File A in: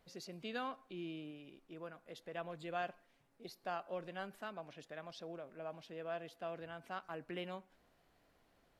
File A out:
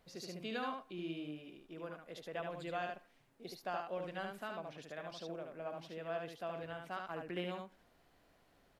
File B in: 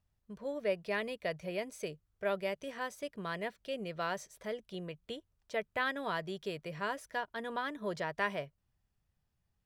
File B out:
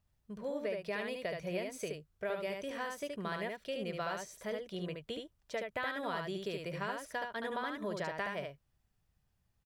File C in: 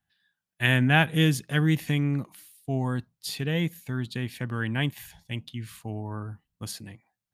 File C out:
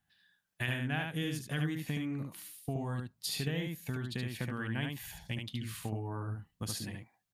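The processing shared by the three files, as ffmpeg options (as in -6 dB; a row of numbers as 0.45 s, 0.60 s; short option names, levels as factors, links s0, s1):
-af "acompressor=threshold=0.0158:ratio=5,aecho=1:1:73:0.631,volume=1.19"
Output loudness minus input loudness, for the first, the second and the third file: +2.5 LU, -1.0 LU, -10.5 LU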